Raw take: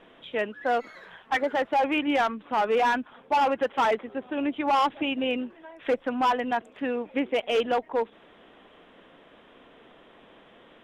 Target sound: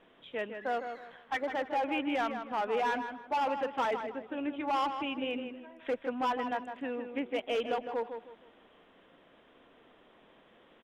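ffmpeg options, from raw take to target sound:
-filter_complex "[0:a]asplit=2[s0][s1];[s1]adelay=157,lowpass=f=3100:p=1,volume=0.422,asplit=2[s2][s3];[s3]adelay=157,lowpass=f=3100:p=1,volume=0.31,asplit=2[s4][s5];[s5]adelay=157,lowpass=f=3100:p=1,volume=0.31,asplit=2[s6][s7];[s7]adelay=157,lowpass=f=3100:p=1,volume=0.31[s8];[s0][s2][s4][s6][s8]amix=inputs=5:normalize=0,volume=0.398"

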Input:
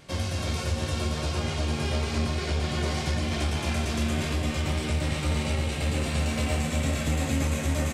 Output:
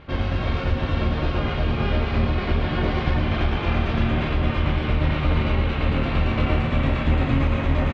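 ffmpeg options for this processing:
-filter_complex "[0:a]lowpass=f=3300:w=0.5412,lowpass=f=3300:w=1.3066,asplit=2[s0][s1];[s1]asetrate=22050,aresample=44100,atempo=2,volume=0.891[s2];[s0][s2]amix=inputs=2:normalize=0,volume=1.58"

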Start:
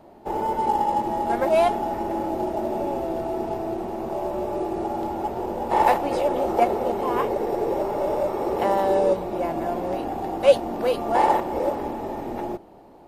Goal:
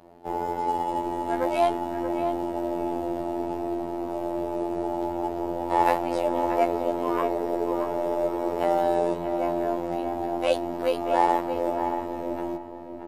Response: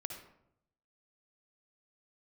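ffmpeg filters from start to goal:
-filter_complex "[0:a]afftfilt=real='hypot(re,im)*cos(PI*b)':imag='0':win_size=2048:overlap=0.75,asplit=2[s0][s1];[s1]adelay=630,lowpass=f=2000:p=1,volume=0.473,asplit=2[s2][s3];[s3]adelay=630,lowpass=f=2000:p=1,volume=0.27,asplit=2[s4][s5];[s5]adelay=630,lowpass=f=2000:p=1,volume=0.27[s6];[s0][s2][s4][s6]amix=inputs=4:normalize=0"

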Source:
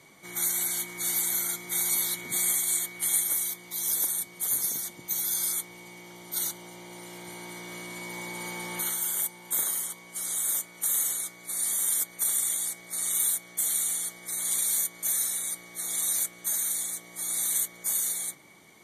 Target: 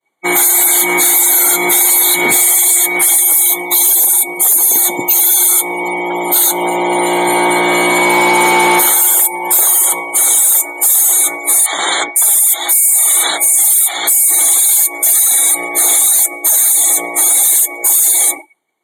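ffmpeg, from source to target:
-filter_complex "[0:a]asettb=1/sr,asplit=3[s0][s1][s2];[s0]atrim=end=11.664[s3];[s1]atrim=start=11.66:end=14.31,asetpts=PTS-STARTPTS,afade=t=in:d=0.004:c=qsin,afade=t=out:st=2.646:d=0.004:c=qsin,acrossover=split=400|5100[s4][s5][s6];[s4]adelay=60[s7];[s6]adelay=500[s8];[s7][s5][s8]amix=inputs=3:normalize=0,atrim=end_sample=116865[s9];[s2]atrim=start=14.306[s10];[s3][s9]acrossfade=d=0.004:c1=hsin:c2=qsin[s11];[s11][s10]acrossfade=d=0.004:c1=qsin:c2=hsin,acompressor=threshold=0.0251:ratio=4,apsyclip=22.4,equalizer=f=810:w=2.1:g=7.5,agate=range=0.0224:threshold=0.158:ratio=3:detection=peak,asuperstop=centerf=5300:order=8:qfactor=2.9,asoftclip=type=hard:threshold=0.316,lowshelf=f=240:t=q:w=1.5:g=-7.5,afftdn=nr=31:nf=-23,highpass=53,volume=1.41"

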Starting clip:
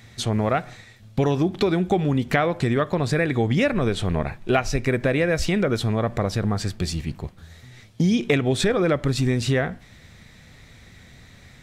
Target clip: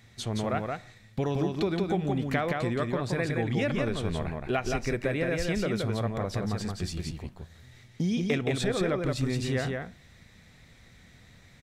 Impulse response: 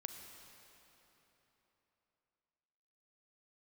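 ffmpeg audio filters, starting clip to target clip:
-af "aecho=1:1:172:0.668,volume=0.376"

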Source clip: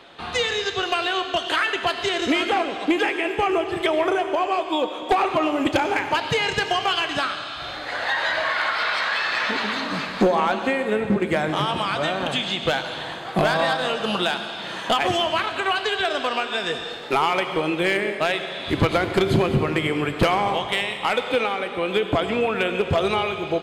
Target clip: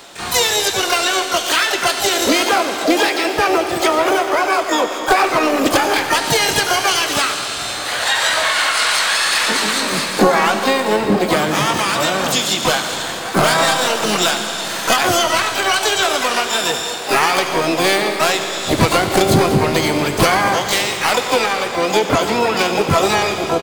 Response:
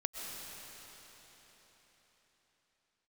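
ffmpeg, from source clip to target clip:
-filter_complex "[0:a]aexciter=amount=3.5:drive=5.7:freq=4300,acontrast=70,asplit=4[s0][s1][s2][s3];[s1]asetrate=35002,aresample=44100,atempo=1.25992,volume=0.178[s4];[s2]asetrate=66075,aresample=44100,atempo=0.66742,volume=0.398[s5];[s3]asetrate=88200,aresample=44100,atempo=0.5,volume=0.631[s6];[s0][s4][s5][s6]amix=inputs=4:normalize=0,asplit=2[s7][s8];[1:a]atrim=start_sample=2205,asetrate=36162,aresample=44100[s9];[s8][s9]afir=irnorm=-1:irlink=0,volume=0.251[s10];[s7][s10]amix=inputs=2:normalize=0,volume=0.631"

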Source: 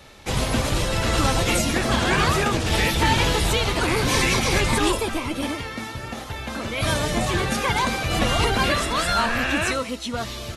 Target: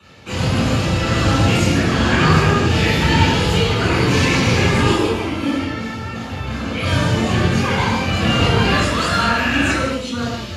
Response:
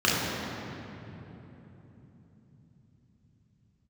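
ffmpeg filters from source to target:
-filter_complex "[0:a]asettb=1/sr,asplit=3[s0][s1][s2];[s0]atrim=end=8.694[s3];[s1]atrim=start=8.69:end=10.24,asetpts=PTS-STARTPTS,afade=t=in:d=0.004:c=qsin,afade=t=out:st=1.546:d=0.004:c=qsin,equalizer=f=10000:w=0.54:g=4.5[s4];[s2]atrim=start=10.236[s5];[s3][s4]acrossfade=d=0.004:c1=hsin:c2=qsin[s6];[s6][s5]acrossfade=d=0.004:c1=qsin:c2=hsin[s7];[1:a]atrim=start_sample=2205,afade=t=out:st=0.27:d=0.01,atrim=end_sample=12348[s8];[s7][s8]afir=irnorm=-1:irlink=0,volume=0.251"

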